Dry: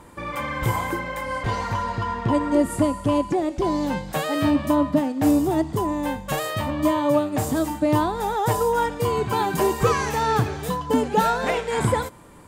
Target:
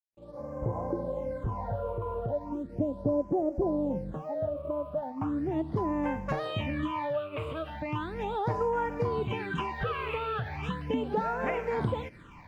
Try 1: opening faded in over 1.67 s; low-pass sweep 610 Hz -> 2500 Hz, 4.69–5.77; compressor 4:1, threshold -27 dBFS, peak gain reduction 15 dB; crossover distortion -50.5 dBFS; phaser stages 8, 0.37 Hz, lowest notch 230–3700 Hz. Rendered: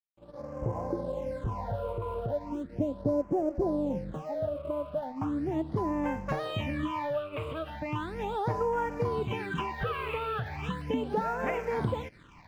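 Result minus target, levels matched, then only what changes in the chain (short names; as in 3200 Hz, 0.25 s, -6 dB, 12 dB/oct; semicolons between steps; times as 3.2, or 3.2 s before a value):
crossover distortion: distortion +10 dB
change: crossover distortion -61 dBFS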